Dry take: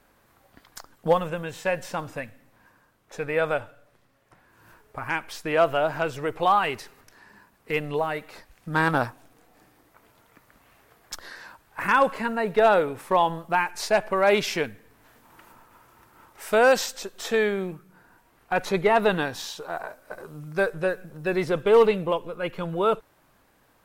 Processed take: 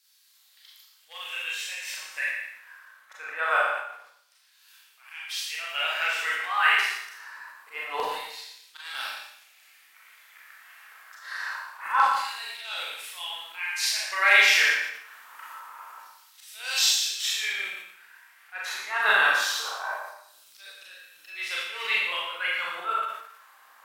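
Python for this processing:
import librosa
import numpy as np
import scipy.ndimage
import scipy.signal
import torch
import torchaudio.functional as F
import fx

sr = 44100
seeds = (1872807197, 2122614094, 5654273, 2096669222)

y = fx.auto_swell(x, sr, attack_ms=255.0)
y = fx.filter_lfo_highpass(y, sr, shape='saw_down', hz=0.25, low_hz=970.0, high_hz=4500.0, q=2.1)
y = y + 10.0 ** (-11.0 / 20.0) * np.pad(y, (int(116 * sr / 1000.0), 0))[:len(y)]
y = fx.rev_schroeder(y, sr, rt60_s=0.71, comb_ms=29, drr_db=-5.0)
y = fx.sustainer(y, sr, db_per_s=84.0)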